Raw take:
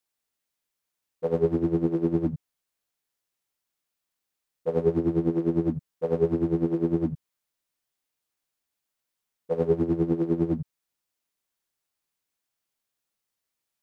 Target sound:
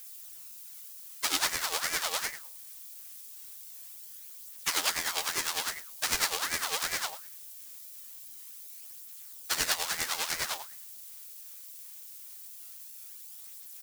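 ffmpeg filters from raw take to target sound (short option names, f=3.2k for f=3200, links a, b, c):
-filter_complex "[0:a]aeval=exprs='if(lt(val(0),0),0.251*val(0),val(0))':c=same,crystalizer=i=4.5:c=0,asoftclip=type=tanh:threshold=-21.5dB,aexciter=amount=14:drive=9.8:freq=2.1k,acrusher=bits=4:mode=log:mix=0:aa=0.000001,aphaser=in_gain=1:out_gain=1:delay=3.5:decay=0.39:speed=0.22:type=triangular,asplit=2[a][b];[b]aecho=0:1:108|216:0.141|0.0367[c];[a][c]amix=inputs=2:normalize=0,aeval=exprs='val(0)*sin(2*PI*1400*n/s+1400*0.45/2.6*sin(2*PI*2.6*n/s))':c=same,volume=-8dB"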